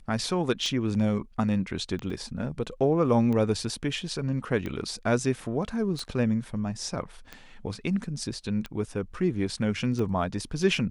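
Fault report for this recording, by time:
tick 45 rpm -21 dBFS
2.1 gap 3.3 ms

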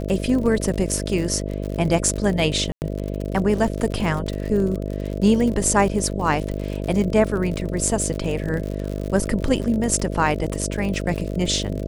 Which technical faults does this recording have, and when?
buzz 50 Hz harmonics 13 -27 dBFS
crackle 63/s -27 dBFS
2.72–2.82 gap 99 ms

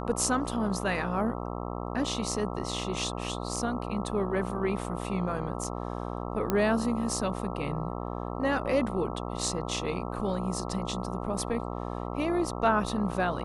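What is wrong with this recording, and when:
buzz 60 Hz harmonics 22 -35 dBFS
6.5 pop -13 dBFS

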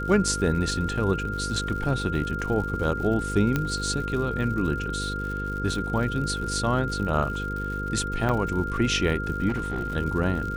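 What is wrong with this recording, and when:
buzz 50 Hz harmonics 10 -32 dBFS
crackle 130/s -34 dBFS
tone 1400 Hz -31 dBFS
3.56 pop -11 dBFS
8.29 gap 4.3 ms
9.48–9.97 clipped -23 dBFS

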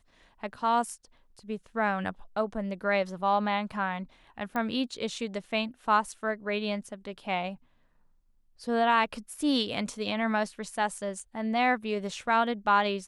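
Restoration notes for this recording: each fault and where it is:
4.56 pop -20 dBFS

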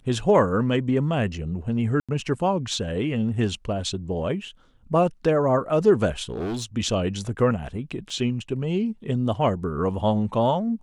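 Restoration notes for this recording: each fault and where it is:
2–2.09 gap 86 ms
6.29–6.65 clipped -25 dBFS
8.1 gap 2.8 ms

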